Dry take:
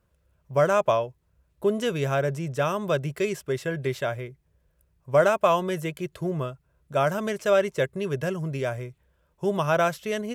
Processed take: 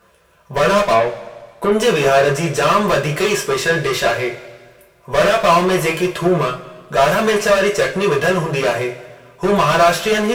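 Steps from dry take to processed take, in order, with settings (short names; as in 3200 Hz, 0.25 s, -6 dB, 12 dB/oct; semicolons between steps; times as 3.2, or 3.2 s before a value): overdrive pedal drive 29 dB, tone 5000 Hz, clips at -8.5 dBFS; 0.92–1.72 treble ducked by the level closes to 2800 Hz, closed at -13.5 dBFS; two-slope reverb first 0.23 s, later 1.6 s, from -19 dB, DRR -3 dB; gain -2.5 dB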